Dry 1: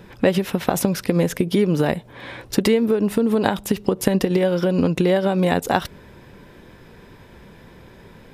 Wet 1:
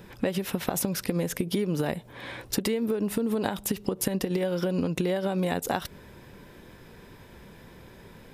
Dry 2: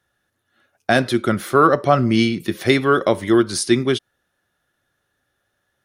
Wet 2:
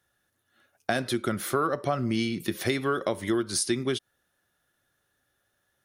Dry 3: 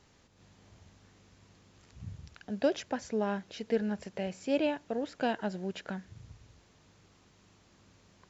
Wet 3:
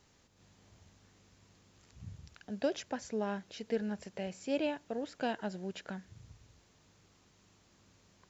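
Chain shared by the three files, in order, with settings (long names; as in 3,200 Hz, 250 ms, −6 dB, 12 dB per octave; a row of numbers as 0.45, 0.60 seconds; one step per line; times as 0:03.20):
high-shelf EQ 6,800 Hz +7.5 dB
downward compressor 4 to 1, threshold −20 dBFS
level −4 dB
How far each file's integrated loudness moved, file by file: −8.5, −10.5, −4.0 LU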